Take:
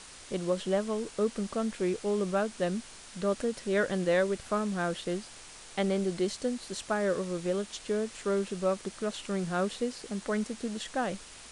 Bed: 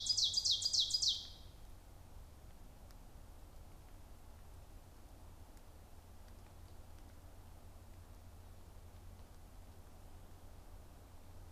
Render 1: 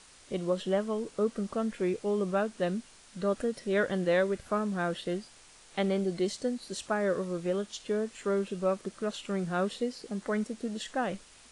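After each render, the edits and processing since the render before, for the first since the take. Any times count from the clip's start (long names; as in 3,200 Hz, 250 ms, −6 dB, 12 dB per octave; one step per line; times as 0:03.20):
noise reduction from a noise print 7 dB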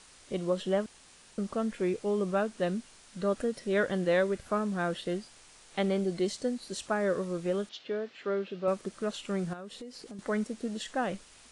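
0:00.86–0:01.38: fill with room tone
0:07.69–0:08.68: loudspeaker in its box 180–4,400 Hz, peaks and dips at 220 Hz −6 dB, 450 Hz −3 dB, 1,000 Hz −5 dB
0:09.53–0:10.19: downward compressor 5 to 1, threshold −41 dBFS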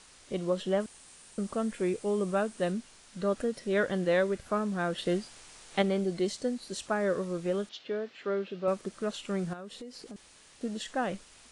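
0:00.80–0:02.72: parametric band 8,800 Hz +7.5 dB 0.5 octaves
0:04.98–0:05.82: clip gain +4 dB
0:10.16–0:10.61: fill with room tone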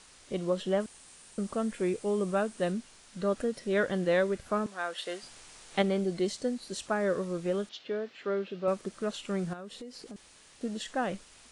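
0:04.66–0:05.23: high-pass filter 660 Hz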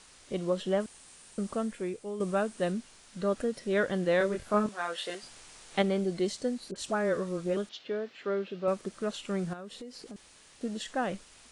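0:01.56–0:02.20: fade out quadratic, to −8 dB
0:04.18–0:05.15: double-tracking delay 24 ms −3 dB
0:06.71–0:07.57: all-pass dispersion highs, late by 48 ms, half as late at 1,100 Hz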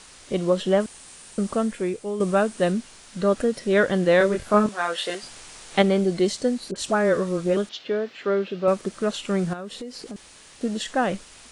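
level +8.5 dB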